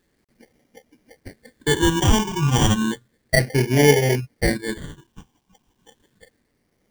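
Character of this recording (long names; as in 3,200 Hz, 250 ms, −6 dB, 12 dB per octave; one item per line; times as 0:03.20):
aliases and images of a low sample rate 1,300 Hz, jitter 0%
phaser sweep stages 8, 0.32 Hz, lowest notch 560–1,200 Hz
a quantiser's noise floor 12 bits, dither none
tremolo triangle 0.87 Hz, depth 40%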